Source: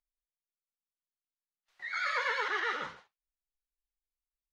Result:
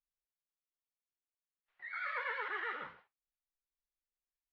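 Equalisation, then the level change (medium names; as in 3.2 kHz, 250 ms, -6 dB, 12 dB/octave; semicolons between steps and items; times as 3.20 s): four-pole ladder low-pass 3.3 kHz, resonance 20%; -2.5 dB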